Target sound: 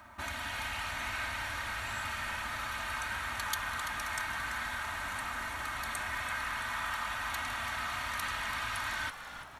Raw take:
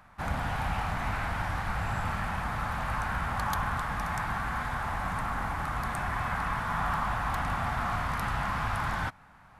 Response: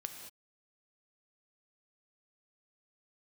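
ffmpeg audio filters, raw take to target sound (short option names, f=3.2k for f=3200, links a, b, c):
-filter_complex "[0:a]highpass=65,equalizer=f=4.8k:t=o:w=0.95:g=3,bandreject=f=5k:w=8.3,aecho=1:1:3.2:0.91,acrossover=split=1700[a][b];[a]acompressor=threshold=-43dB:ratio=10[c];[c][b]amix=inputs=2:normalize=0,acrusher=bits=11:mix=0:aa=0.000001,asplit=2[d][e];[e]asplit=5[f][g][h][i][j];[f]adelay=336,afreqshift=-110,volume=-10.5dB[k];[g]adelay=672,afreqshift=-220,volume=-17.4dB[l];[h]adelay=1008,afreqshift=-330,volume=-24.4dB[m];[i]adelay=1344,afreqshift=-440,volume=-31.3dB[n];[j]adelay=1680,afreqshift=-550,volume=-38.2dB[o];[k][l][m][n][o]amix=inputs=5:normalize=0[p];[d][p]amix=inputs=2:normalize=0,volume=1dB"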